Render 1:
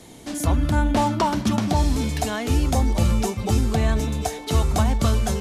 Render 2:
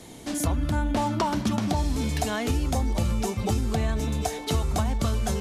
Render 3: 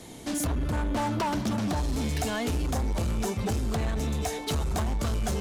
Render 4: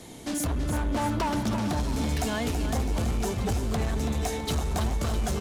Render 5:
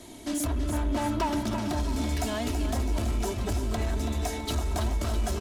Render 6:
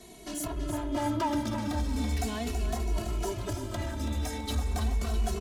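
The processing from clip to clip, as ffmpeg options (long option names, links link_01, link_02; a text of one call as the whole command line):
ffmpeg -i in.wav -af "acompressor=threshold=-22dB:ratio=4" out.wav
ffmpeg -i in.wav -af "asoftclip=type=hard:threshold=-24.5dB" out.wav
ffmpeg -i in.wav -af "aecho=1:1:329|658|987|1316|1645|1974|2303:0.355|0.206|0.119|0.0692|0.0402|0.0233|0.0135" out.wav
ffmpeg -i in.wav -af "aecho=1:1:3.1:0.58,volume=-2.5dB" out.wav
ffmpeg -i in.wav -filter_complex "[0:a]asplit=2[link_01][link_02];[link_02]adelay=2.3,afreqshift=-0.38[link_03];[link_01][link_03]amix=inputs=2:normalize=1" out.wav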